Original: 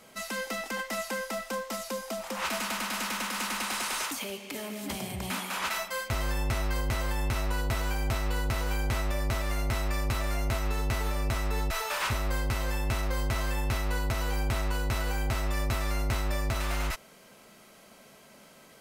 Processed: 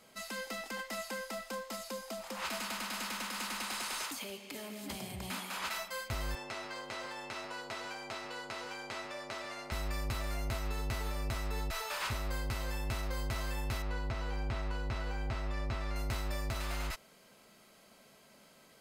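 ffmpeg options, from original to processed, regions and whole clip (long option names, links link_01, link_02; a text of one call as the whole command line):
ffmpeg -i in.wav -filter_complex "[0:a]asettb=1/sr,asplit=3[link_01][link_02][link_03];[link_01]atrim=end=6.354[link_04];[link_02]atrim=start=6.35:end=9.72,asetpts=PTS-STARTPTS,afade=type=in:duration=0.004:curve=qsin,afade=type=out:start_time=3.366:duration=0.004:curve=qsin,highpass=320,lowpass=6700,aecho=1:1:128:0.211,atrim=end_sample=148617[link_05];[link_03]atrim=start=9.716[link_06];[link_04][link_05]acrossfade=duration=0.004:curve1=hsin:curve2=qsin[link_07];[link_07][link_06]acrossfade=duration=0.004:curve1=qsin:curve2=hsin,asettb=1/sr,asplit=3[link_08][link_09][link_10];[link_08]atrim=end=13.824[link_11];[link_09]atrim=start=13.82:end=15.96,asetpts=PTS-STARTPTS,afade=type=in:duration=0.004:curve=qsin,afade=type=out:start_time=2.136:duration=0.004:curve=qsin,acrossover=split=8200[link_12][link_13];[link_13]acompressor=threshold=-58dB:ratio=4:attack=1:release=60[link_14];[link_12][link_14]amix=inputs=2:normalize=0,highshelf=frequency=4900:gain=-11.5[link_15];[link_10]atrim=start=15.956[link_16];[link_11][link_15]acrossfade=duration=0.004:curve1=hsin:curve2=qsin[link_17];[link_17][link_16]acrossfade=duration=0.004:curve1=qsin:curve2=hsin,equalizer=frequency=4700:width_type=o:width=0.74:gain=3.5,bandreject=frequency=5700:width=16,volume=-7dB" out.wav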